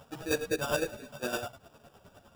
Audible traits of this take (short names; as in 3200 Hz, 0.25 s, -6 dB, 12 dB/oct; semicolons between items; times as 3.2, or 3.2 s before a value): a quantiser's noise floor 10-bit, dither none; chopped level 9.8 Hz, depth 60%, duty 35%; aliases and images of a low sample rate 2100 Hz, jitter 0%; a shimmering, thickened sound